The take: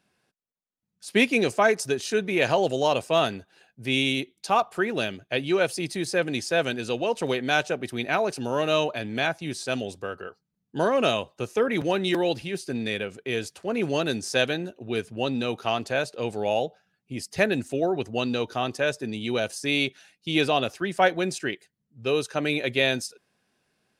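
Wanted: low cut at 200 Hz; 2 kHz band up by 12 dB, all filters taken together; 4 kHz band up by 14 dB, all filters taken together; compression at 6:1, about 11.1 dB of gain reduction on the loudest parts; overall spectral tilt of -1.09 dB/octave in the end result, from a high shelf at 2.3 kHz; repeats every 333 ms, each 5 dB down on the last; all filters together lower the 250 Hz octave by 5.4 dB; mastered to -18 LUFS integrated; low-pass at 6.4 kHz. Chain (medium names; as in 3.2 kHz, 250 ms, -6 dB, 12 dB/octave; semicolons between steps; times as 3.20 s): high-pass 200 Hz; low-pass 6.4 kHz; peaking EQ 250 Hz -6 dB; peaking EQ 2 kHz +9 dB; treble shelf 2.3 kHz +7 dB; peaking EQ 4 kHz +8.5 dB; compression 6:1, threshold -18 dBFS; feedback delay 333 ms, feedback 56%, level -5 dB; trim +3.5 dB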